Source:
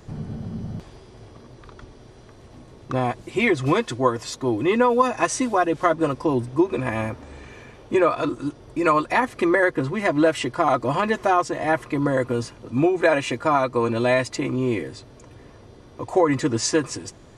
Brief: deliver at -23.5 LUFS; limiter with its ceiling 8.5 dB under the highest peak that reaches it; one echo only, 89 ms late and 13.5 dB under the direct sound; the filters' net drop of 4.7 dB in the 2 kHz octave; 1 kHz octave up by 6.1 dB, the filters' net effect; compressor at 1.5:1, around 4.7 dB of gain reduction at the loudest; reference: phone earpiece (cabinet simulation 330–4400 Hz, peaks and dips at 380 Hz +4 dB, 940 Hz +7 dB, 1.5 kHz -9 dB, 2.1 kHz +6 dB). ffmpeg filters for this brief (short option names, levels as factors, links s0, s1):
-af "equalizer=f=1000:t=o:g=5,equalizer=f=2000:t=o:g=-7,acompressor=threshold=0.0708:ratio=1.5,alimiter=limit=0.158:level=0:latency=1,highpass=330,equalizer=f=380:t=q:w=4:g=4,equalizer=f=940:t=q:w=4:g=7,equalizer=f=1500:t=q:w=4:g=-9,equalizer=f=2100:t=q:w=4:g=6,lowpass=f=4400:w=0.5412,lowpass=f=4400:w=1.3066,aecho=1:1:89:0.211,volume=1.41"